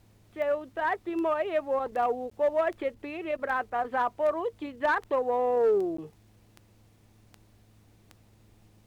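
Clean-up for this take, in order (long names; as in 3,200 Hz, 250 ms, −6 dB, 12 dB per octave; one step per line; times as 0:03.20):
clipped peaks rebuilt −19 dBFS
click removal
hum removal 106.1 Hz, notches 3
repair the gap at 0:02.30/0:05.97, 14 ms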